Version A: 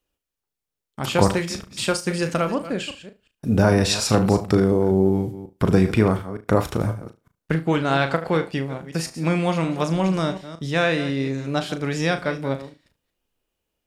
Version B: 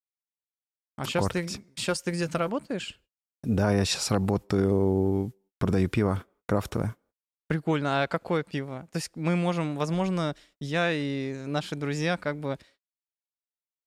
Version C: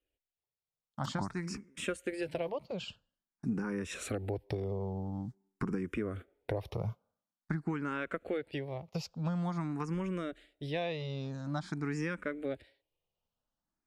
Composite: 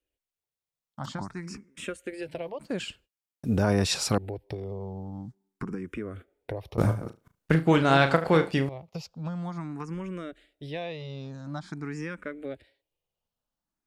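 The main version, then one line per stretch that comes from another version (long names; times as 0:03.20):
C
0:02.60–0:04.18: punch in from B
0:06.78–0:08.69: punch in from A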